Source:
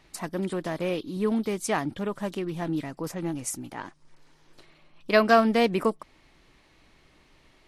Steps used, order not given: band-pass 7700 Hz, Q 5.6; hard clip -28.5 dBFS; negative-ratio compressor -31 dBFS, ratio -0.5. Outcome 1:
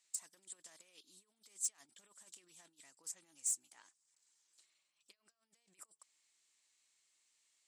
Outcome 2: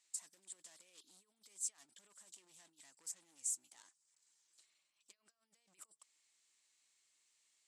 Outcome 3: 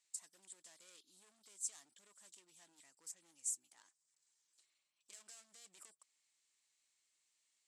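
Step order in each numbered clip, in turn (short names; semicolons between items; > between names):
negative-ratio compressor > band-pass > hard clip; negative-ratio compressor > hard clip > band-pass; hard clip > negative-ratio compressor > band-pass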